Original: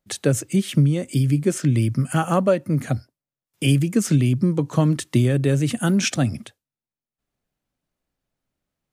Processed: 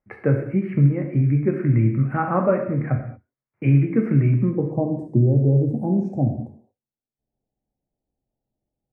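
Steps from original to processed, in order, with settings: elliptic low-pass 2.2 kHz, stop band 40 dB, from 4.49 s 840 Hz; gated-style reverb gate 260 ms falling, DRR 2 dB; trim -1.5 dB

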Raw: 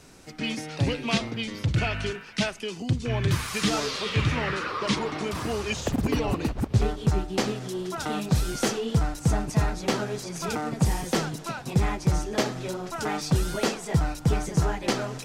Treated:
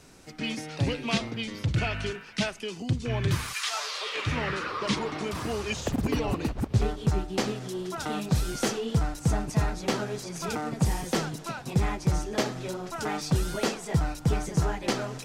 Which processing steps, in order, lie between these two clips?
3.52–4.26 s: high-pass 1.1 kHz -> 360 Hz 24 dB/octave; trim -2 dB

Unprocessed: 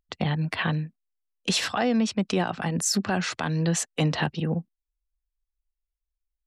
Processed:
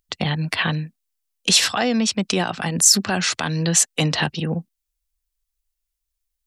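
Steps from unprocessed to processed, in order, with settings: treble shelf 2.8 kHz +11.5 dB; trim +2.5 dB

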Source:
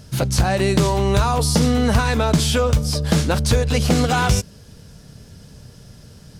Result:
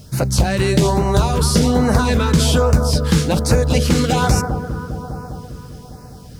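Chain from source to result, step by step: bit crusher 9-bit; bucket-brigade echo 201 ms, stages 2048, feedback 75%, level -7.5 dB; LFO notch sine 1.2 Hz 650–3400 Hz; trim +2 dB

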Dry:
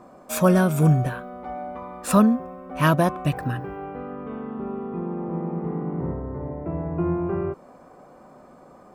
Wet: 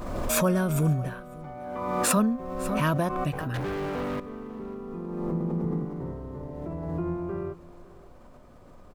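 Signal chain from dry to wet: band-stop 770 Hz, Q 12; 3.54–4.20 s: waveshaping leveller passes 5; 5.32–5.85 s: bass shelf 230 Hz +11 dB; delay 549 ms -21 dB; added noise brown -45 dBFS; 1.54–2.15 s: high-pass 53 Hz -> 120 Hz; swell ahead of each attack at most 32 dB/s; trim -7 dB

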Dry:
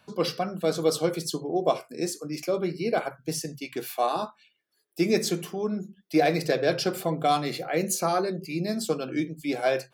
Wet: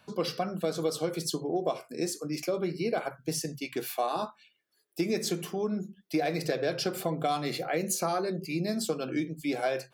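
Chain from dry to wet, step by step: compression 4:1, threshold -26 dBFS, peak gain reduction 9 dB

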